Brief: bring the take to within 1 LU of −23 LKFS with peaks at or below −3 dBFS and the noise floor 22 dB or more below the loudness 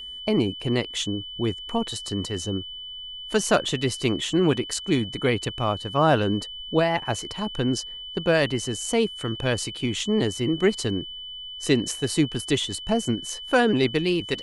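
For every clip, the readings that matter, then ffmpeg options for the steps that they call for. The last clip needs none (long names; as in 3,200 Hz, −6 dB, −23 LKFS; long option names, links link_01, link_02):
interfering tone 3,000 Hz; level of the tone −35 dBFS; integrated loudness −25.0 LKFS; sample peak −6.0 dBFS; target loudness −23.0 LKFS
→ -af "bandreject=frequency=3000:width=30"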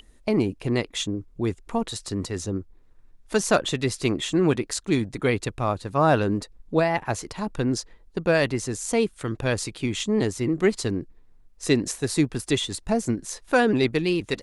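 interfering tone none found; integrated loudness −25.0 LKFS; sample peak −5.5 dBFS; target loudness −23.0 LKFS
→ -af "volume=2dB"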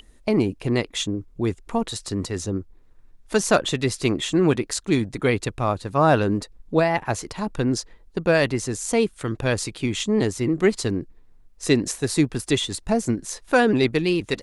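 integrated loudness −23.0 LKFS; sample peak −3.5 dBFS; background noise floor −52 dBFS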